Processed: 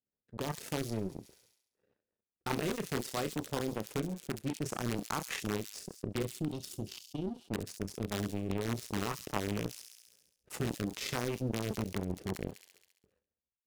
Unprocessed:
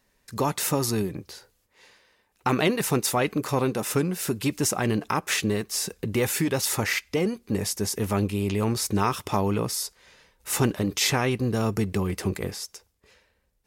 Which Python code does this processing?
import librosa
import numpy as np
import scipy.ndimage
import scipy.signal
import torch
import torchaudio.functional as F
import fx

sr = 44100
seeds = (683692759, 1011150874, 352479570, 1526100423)

p1 = fx.wiener(x, sr, points=41)
p2 = scipy.signal.sosfilt(scipy.signal.butter(2, 90.0, 'highpass', fs=sr, output='sos'), p1)
p3 = fx.high_shelf(p2, sr, hz=4100.0, db=-9.5)
p4 = fx.cheby1_bandstop(p3, sr, low_hz=380.0, high_hz=2900.0, order=5, at=(6.22, 7.33), fade=0.02)
p5 = fx.chorus_voices(p4, sr, voices=6, hz=0.49, base_ms=30, depth_ms=4.1, mix_pct=30)
p6 = (np.mod(10.0 ** (19.5 / 20.0) * p5 + 1.0, 2.0) - 1.0) / 10.0 ** (19.5 / 20.0)
p7 = p5 + F.gain(torch.from_numpy(p6), -5.5).numpy()
p8 = fx.power_curve(p7, sr, exponent=2.0)
p9 = fx.rotary(p8, sr, hz=5.0)
p10 = p9 + fx.echo_wet_highpass(p9, sr, ms=68, feedback_pct=50, hz=5100.0, wet_db=-9.0, dry=0)
p11 = fx.env_flatten(p10, sr, amount_pct=50)
y = F.gain(torch.from_numpy(p11), -1.0).numpy()